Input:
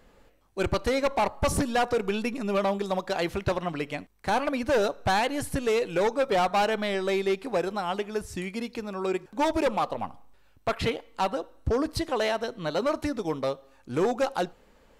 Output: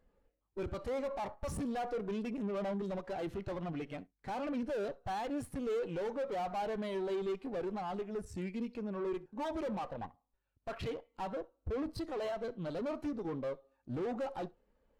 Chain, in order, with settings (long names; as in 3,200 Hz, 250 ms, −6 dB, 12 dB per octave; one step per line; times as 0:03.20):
tube saturation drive 37 dB, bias 0.65
flutter between parallel walls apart 11.4 metres, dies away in 0.2 s
every bin expanded away from the loudest bin 1.5 to 1
level +2 dB